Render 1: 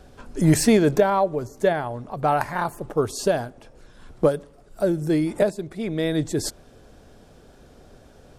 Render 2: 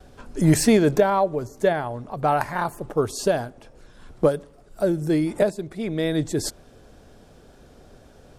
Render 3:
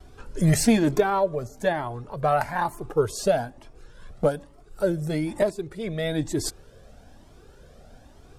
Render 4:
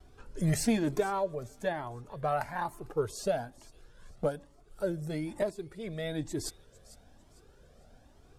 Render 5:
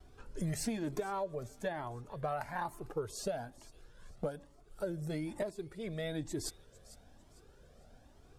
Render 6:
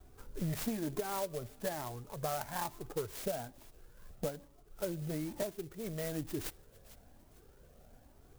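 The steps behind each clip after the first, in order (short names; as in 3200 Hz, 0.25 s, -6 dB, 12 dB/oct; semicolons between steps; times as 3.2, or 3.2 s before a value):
gate with hold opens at -45 dBFS
cascading flanger rising 1.1 Hz; gain +3 dB
thin delay 0.451 s, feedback 33%, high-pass 3700 Hz, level -16.5 dB; gain -8.5 dB
compressor 6:1, threshold -31 dBFS, peak gain reduction 9.5 dB; gain -1.5 dB
clock jitter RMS 0.085 ms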